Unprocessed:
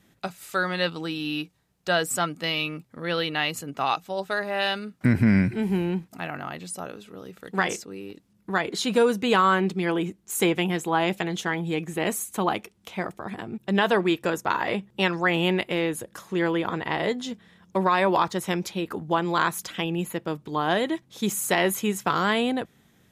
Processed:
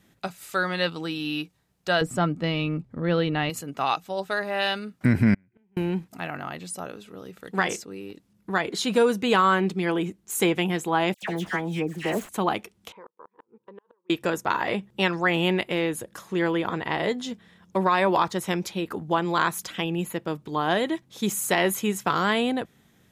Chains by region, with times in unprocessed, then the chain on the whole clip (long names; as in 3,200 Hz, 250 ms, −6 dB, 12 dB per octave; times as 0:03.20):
0:02.01–0:03.50: low-pass filter 12,000 Hz + spectral tilt −3.5 dB per octave
0:05.34–0:05.77: gate with flip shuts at −20 dBFS, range −40 dB + Savitzky-Golay smoothing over 25 samples
0:11.14–0:12.29: running median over 9 samples + all-pass dispersion lows, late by 86 ms, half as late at 1,900 Hz
0:12.92–0:14.10: downward compressor 4 to 1, threshold −29 dBFS + pair of resonant band-passes 690 Hz, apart 1 octave + gate with flip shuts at −32 dBFS, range −32 dB
whole clip: no processing